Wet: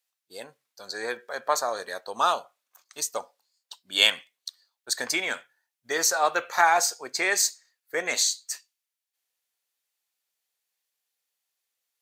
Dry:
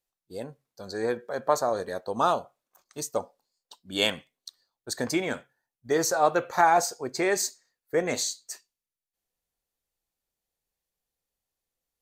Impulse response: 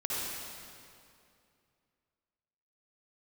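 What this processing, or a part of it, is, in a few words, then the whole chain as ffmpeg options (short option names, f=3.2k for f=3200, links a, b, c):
filter by subtraction: -filter_complex "[0:a]asplit=2[a][b];[b]lowpass=2.3k,volume=-1[c];[a][c]amix=inputs=2:normalize=0,volume=5dB"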